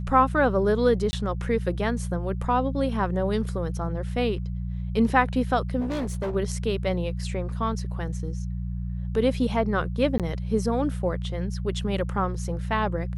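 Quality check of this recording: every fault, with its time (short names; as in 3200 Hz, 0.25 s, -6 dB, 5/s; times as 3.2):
hum 60 Hz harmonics 3 -30 dBFS
1.11–1.13 gap 20 ms
5.8–6.36 clipped -25 dBFS
10.18–10.2 gap 17 ms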